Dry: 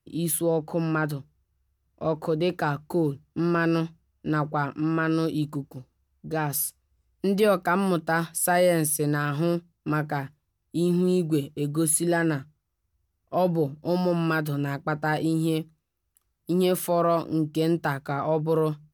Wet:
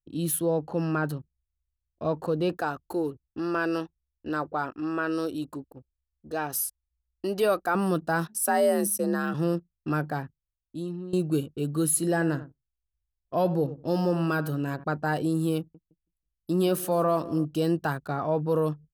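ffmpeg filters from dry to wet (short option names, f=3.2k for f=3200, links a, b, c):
-filter_complex "[0:a]asettb=1/sr,asplit=3[a][b][c];[a]atrim=end=2.574[d];[b]atrim=start=2.57:end=7.75,asetpts=PTS-STARTPTS,afade=t=in:d=0.004:c=qsin,afade=t=out:st=5.176:d=0.004:c=qsin,equalizer=f=160:w=1.5:g=-12.5[e];[c]atrim=start=7.746[f];[d][e]acrossfade=d=0.004:c1=hsin:c2=qsin[g];[g][f]acrossfade=d=0.004:c1=qsin:c2=hsin,asplit=3[h][i][j];[h]afade=t=out:st=8.27:d=0.02[k];[i]afreqshift=53,afade=t=in:st=8.27:d=0.02,afade=t=out:st=9.33:d=0.02[l];[j]afade=t=in:st=9.33:d=0.02[m];[k][l][m]amix=inputs=3:normalize=0,asplit=3[n][o][p];[n]afade=t=out:st=11.96:d=0.02[q];[o]asplit=2[r][s];[s]adelay=95,lowpass=f=1.9k:p=1,volume=-14dB,asplit=2[t][u];[u]adelay=95,lowpass=f=1.9k:p=1,volume=0.16[v];[r][t][v]amix=inputs=3:normalize=0,afade=t=in:st=11.96:d=0.02,afade=t=out:st=14.83:d=0.02[w];[p]afade=t=in:st=14.83:d=0.02[x];[q][w][x]amix=inputs=3:normalize=0,asettb=1/sr,asplit=3[y][z][aa];[y]atrim=end=15.584[ab];[z]atrim=start=15.58:end=17.45,asetpts=PTS-STARTPTS,afade=t=in:d=0.004:c=qsin,afade=t=out:st=1.866:d=0.004:c=qsin,aecho=1:1:163|326|489|652:0.119|0.057|0.0274|0.0131,atrim=end_sample=82467[ac];[aa]atrim=start=17.446[ad];[ab][ac]acrossfade=d=0.004:c1=hsin:c2=qsin[ae];[ae][ad]acrossfade=d=0.004:c1=qsin:c2=hsin,asplit=2[af][ag];[af]atrim=end=11.13,asetpts=PTS-STARTPTS,afade=t=out:st=10.05:d=1.08:silence=0.158489[ah];[ag]atrim=start=11.13,asetpts=PTS-STARTPTS,afade=t=in:d=0.004:c=hsin:silence=0.158489[ai];[ah][ai]concat=n=2:v=0:a=1,adynamicequalizer=threshold=0.00631:dfrequency=3300:dqfactor=0.9:tfrequency=3300:tqfactor=0.9:attack=5:release=100:ratio=0.375:range=3:mode=cutabove:tftype=bell,bandreject=f=2.1k:w=6.5,anlmdn=0.0251,volume=-1.5dB"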